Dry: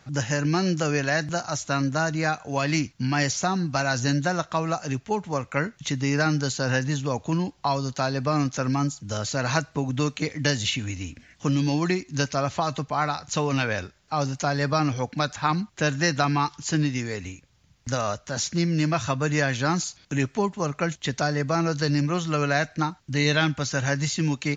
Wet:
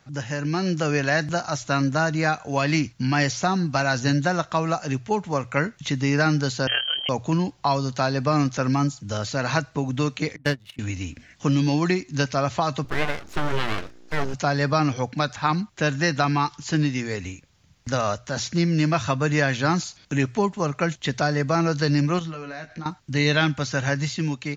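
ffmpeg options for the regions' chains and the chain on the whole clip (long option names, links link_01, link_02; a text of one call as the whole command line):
ffmpeg -i in.wav -filter_complex "[0:a]asettb=1/sr,asplit=3[link_01][link_02][link_03];[link_01]atrim=end=6.674[link_04];[link_02]atrim=start=6.67:end=7.09,asetpts=PTS-STARTPTS,afade=type=in:duration=0.004:curve=qsin,afade=type=out:start_time=0.416:duration=0.004:curve=qsin,tremolo=f=38:d=0.621,lowpass=frequency=2800:width_type=q:width=0.5098,lowpass=frequency=2800:width_type=q:width=0.6013,lowpass=frequency=2800:width_type=q:width=0.9,lowpass=frequency=2800:width_type=q:width=2.563,afreqshift=-3300,highpass=57[link_05];[link_03]atrim=start=7.086[link_06];[link_04][link_05]acrossfade=duration=0.004:curve1=hsin:curve2=qsin[link_07];[link_07][link_06]acrossfade=duration=0.004:curve1=qsin:curve2=hsin,asettb=1/sr,asplit=3[link_08][link_09][link_10];[link_08]atrim=end=10.364[link_11];[link_09]atrim=start=10.36:end=10.79,asetpts=PTS-STARTPTS,afade=type=in:duration=0.004:curve=qsin,afade=type=out:start_time=0.426:duration=0.004:curve=qsin,highshelf=frequency=5600:gain=-7.5,adynamicsmooth=sensitivity=5:basefreq=760,agate=range=-24dB:threshold=-24dB:ratio=16:release=100:detection=peak[link_12];[link_10]atrim=start=10.786[link_13];[link_11][link_12]acrossfade=duration=0.004:curve1=hsin:curve2=qsin[link_14];[link_14][link_13]acrossfade=duration=0.004:curve1=qsin:curve2=hsin,asettb=1/sr,asplit=3[link_15][link_16][link_17];[link_15]atrim=end=12.844[link_18];[link_16]atrim=start=12.84:end=14.34,asetpts=PTS-STARTPTS,afade=type=in:duration=0.004:curve=qsin,afade=type=out:start_time=1.496:duration=0.004:curve=qsin,acrossover=split=2900[link_19][link_20];[link_20]acompressor=threshold=-51dB:ratio=4:attack=1:release=60[link_21];[link_19][link_21]amix=inputs=2:normalize=0,aeval=exprs='val(0)+0.00501*(sin(2*PI*60*n/s)+sin(2*PI*2*60*n/s)/2+sin(2*PI*3*60*n/s)/3+sin(2*PI*4*60*n/s)/4+sin(2*PI*5*60*n/s)/5)':channel_layout=same,aeval=exprs='abs(val(0))':channel_layout=same[link_22];[link_17]atrim=start=14.336[link_23];[link_18][link_22]acrossfade=duration=0.004:curve1=hsin:curve2=qsin[link_24];[link_24][link_23]acrossfade=duration=0.004:curve1=qsin:curve2=hsin,asettb=1/sr,asplit=3[link_25][link_26][link_27];[link_25]atrim=end=22.194[link_28];[link_26]atrim=start=22.19:end=22.86,asetpts=PTS-STARTPTS,afade=type=in:duration=0.004:curve=qsin,afade=type=out:start_time=0.666:duration=0.004:curve=qsin,lowpass=5100,acompressor=threshold=-34dB:ratio=8:attack=3.2:release=140:knee=1:detection=peak,asplit=2[link_29][link_30];[link_30]adelay=18,volume=-5.5dB[link_31];[link_29][link_31]amix=inputs=2:normalize=0,atrim=end_sample=29547[link_32];[link_27]atrim=start=22.856[link_33];[link_28][link_32]acrossfade=duration=0.004:curve1=hsin:curve2=qsin[link_34];[link_34][link_33]acrossfade=duration=0.004:curve1=qsin:curve2=hsin,acrossover=split=5700[link_35][link_36];[link_36]acompressor=threshold=-47dB:ratio=4:attack=1:release=60[link_37];[link_35][link_37]amix=inputs=2:normalize=0,bandreject=frequency=60:width_type=h:width=6,bandreject=frequency=120:width_type=h:width=6,dynaudnorm=framelen=280:gausssize=5:maxgain=6.5dB,volume=-3.5dB" out.wav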